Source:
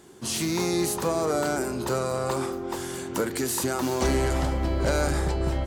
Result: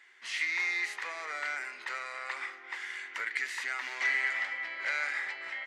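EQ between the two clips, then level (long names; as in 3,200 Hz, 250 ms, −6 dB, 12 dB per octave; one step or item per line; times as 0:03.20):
high-pass with resonance 2,000 Hz, resonance Q 8.1
head-to-tape spacing loss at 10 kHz 25 dB
0.0 dB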